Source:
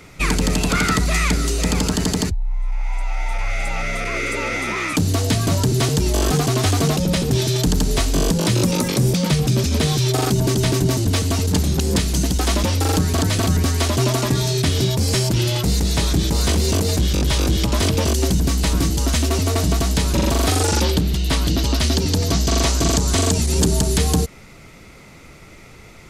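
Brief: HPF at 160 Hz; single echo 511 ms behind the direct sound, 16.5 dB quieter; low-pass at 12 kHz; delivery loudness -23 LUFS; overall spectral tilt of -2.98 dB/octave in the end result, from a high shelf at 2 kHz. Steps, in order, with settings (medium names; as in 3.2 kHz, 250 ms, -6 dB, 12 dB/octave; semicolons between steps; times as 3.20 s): high-pass 160 Hz; low-pass 12 kHz; treble shelf 2 kHz +4.5 dB; delay 511 ms -16.5 dB; trim -4 dB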